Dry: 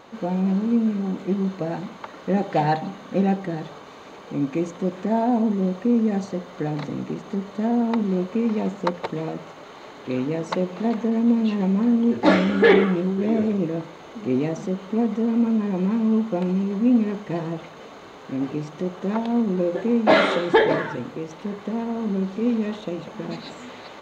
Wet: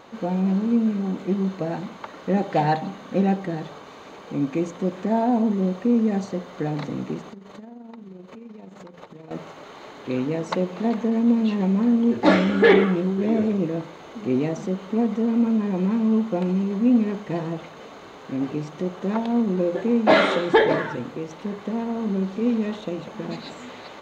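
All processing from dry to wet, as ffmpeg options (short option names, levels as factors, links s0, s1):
-filter_complex "[0:a]asettb=1/sr,asplit=3[s0][s1][s2];[s0]atrim=end=7.294[s3];[s1]atrim=start=7.29:end=9.31,asetpts=PTS-STARTPTS,afade=t=in:d=0.004:c=qsin,afade=t=out:st=2.016:d=0.004:c=qsin,acompressor=threshold=0.0178:ratio=20:attack=3.2:release=140:knee=1:detection=peak,tremolo=f=23:d=0.519[s4];[s2]atrim=start=9.306[s5];[s3][s4]acrossfade=d=0.004:c1=hsin:c2=qsin[s6];[s6][s5]acrossfade=d=0.004:c1=qsin:c2=hsin"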